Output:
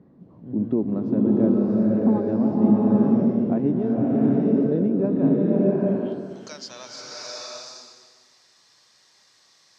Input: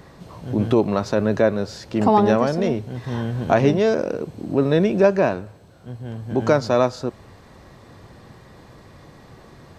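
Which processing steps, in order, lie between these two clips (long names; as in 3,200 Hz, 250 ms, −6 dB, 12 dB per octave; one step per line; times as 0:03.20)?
band-pass filter sweep 240 Hz → 5,500 Hz, 0:05.27–0:06.23
slow-attack reverb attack 750 ms, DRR −5 dB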